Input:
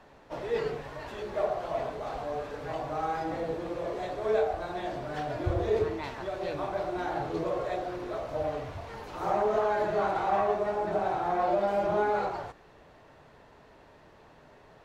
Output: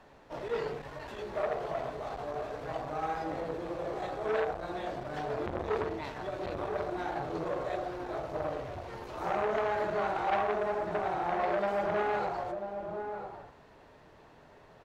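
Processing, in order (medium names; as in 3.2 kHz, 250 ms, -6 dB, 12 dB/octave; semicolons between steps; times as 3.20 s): echo from a far wall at 170 m, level -8 dB; transformer saturation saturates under 1.2 kHz; trim -1.5 dB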